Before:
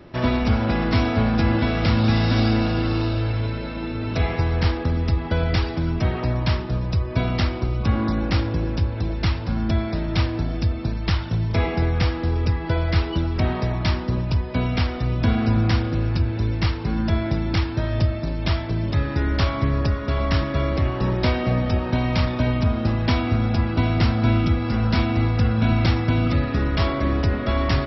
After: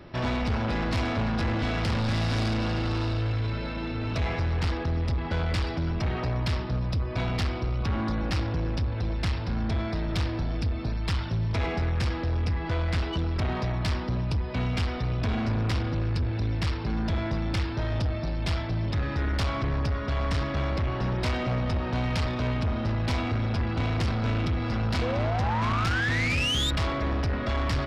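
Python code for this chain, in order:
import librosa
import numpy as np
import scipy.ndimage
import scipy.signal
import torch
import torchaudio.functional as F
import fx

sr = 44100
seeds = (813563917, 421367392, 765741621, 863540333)

y = fx.spec_paint(x, sr, seeds[0], shape='rise', start_s=25.01, length_s=1.7, low_hz=470.0, high_hz=3800.0, level_db=-23.0)
y = 10.0 ** (-22.0 / 20.0) * np.tanh(y / 10.0 ** (-22.0 / 20.0))
y = fx.peak_eq(y, sr, hz=320.0, db=-3.5, octaves=1.9)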